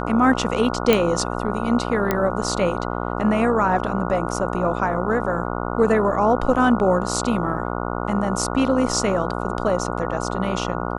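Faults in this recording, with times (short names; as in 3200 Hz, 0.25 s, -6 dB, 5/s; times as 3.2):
buzz 60 Hz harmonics 24 -26 dBFS
0.93 pop -3 dBFS
2.11 pop -6 dBFS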